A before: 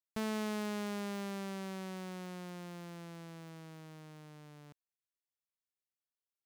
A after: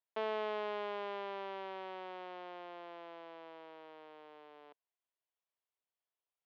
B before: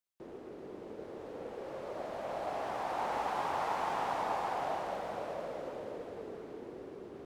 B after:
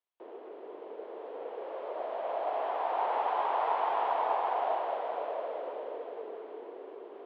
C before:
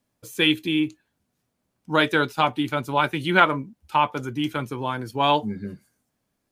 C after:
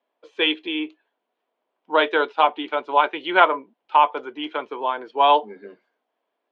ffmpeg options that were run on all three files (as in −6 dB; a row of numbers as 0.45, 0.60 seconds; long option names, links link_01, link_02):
-af "highpass=frequency=340:width=0.5412,highpass=frequency=340:width=1.3066,equalizer=frequency=450:width_type=q:width=4:gain=5,equalizer=frequency=680:width_type=q:width=4:gain=7,equalizer=frequency=980:width_type=q:width=4:gain=7,equalizer=frequency=3200:width_type=q:width=4:gain=4,lowpass=frequency=3400:width=0.5412,lowpass=frequency=3400:width=1.3066,volume=-1dB"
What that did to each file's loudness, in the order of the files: −1.0, +5.0, +2.0 LU